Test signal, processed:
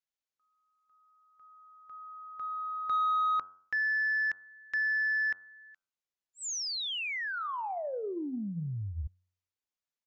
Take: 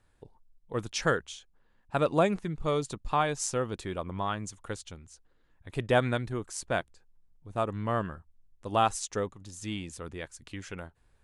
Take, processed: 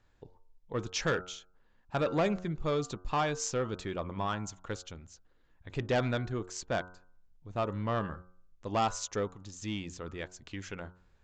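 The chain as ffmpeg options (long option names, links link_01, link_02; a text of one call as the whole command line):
ffmpeg -i in.wav -af "bandreject=frequency=90.97:width_type=h:width=4,bandreject=frequency=181.94:width_type=h:width=4,bandreject=frequency=272.91:width_type=h:width=4,bandreject=frequency=363.88:width_type=h:width=4,bandreject=frequency=454.85:width_type=h:width=4,bandreject=frequency=545.82:width_type=h:width=4,bandreject=frequency=636.79:width_type=h:width=4,bandreject=frequency=727.76:width_type=h:width=4,bandreject=frequency=818.73:width_type=h:width=4,bandreject=frequency=909.7:width_type=h:width=4,bandreject=frequency=1000.67:width_type=h:width=4,bandreject=frequency=1091.64:width_type=h:width=4,bandreject=frequency=1182.61:width_type=h:width=4,bandreject=frequency=1273.58:width_type=h:width=4,bandreject=frequency=1364.55:width_type=h:width=4,bandreject=frequency=1455.52:width_type=h:width=4,bandreject=frequency=1546.49:width_type=h:width=4,aresample=16000,asoftclip=type=tanh:threshold=-22.5dB,aresample=44100" out.wav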